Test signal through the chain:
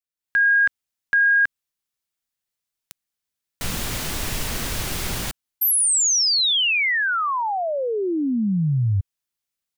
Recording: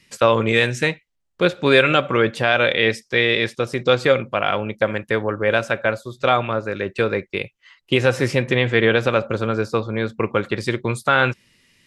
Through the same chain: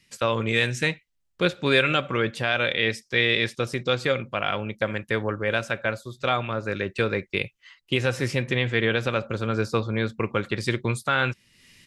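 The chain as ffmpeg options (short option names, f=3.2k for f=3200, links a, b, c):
-af "dynaudnorm=f=160:g=3:m=11dB,equalizer=f=620:w=0.44:g=-5.5,volume=-4.5dB"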